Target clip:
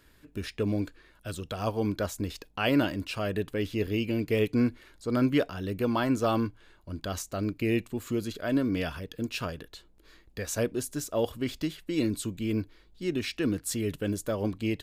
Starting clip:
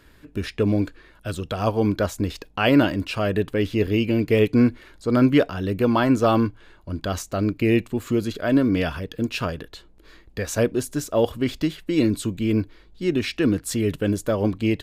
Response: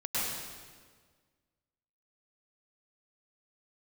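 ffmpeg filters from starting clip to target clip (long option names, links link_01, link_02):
-af "highshelf=frequency=4400:gain=6.5,volume=-8dB"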